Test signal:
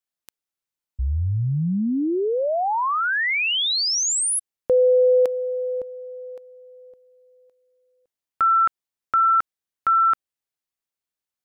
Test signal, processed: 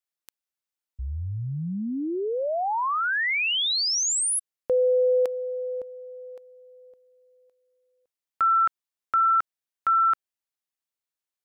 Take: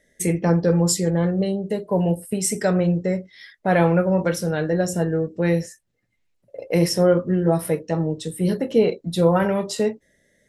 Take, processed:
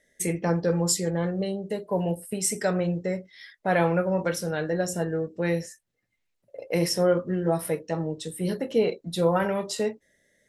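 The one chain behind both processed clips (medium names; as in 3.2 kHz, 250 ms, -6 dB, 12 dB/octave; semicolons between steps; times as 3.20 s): bass shelf 390 Hz -6 dB; trim -2.5 dB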